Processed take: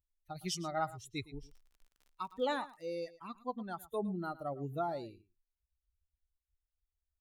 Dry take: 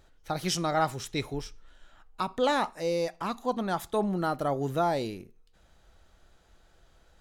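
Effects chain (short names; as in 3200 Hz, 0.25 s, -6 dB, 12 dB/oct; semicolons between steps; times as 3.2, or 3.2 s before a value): per-bin expansion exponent 2; 1.43–2.87 crackle 52/s -46 dBFS; echo 0.111 s -18 dB; gain -6 dB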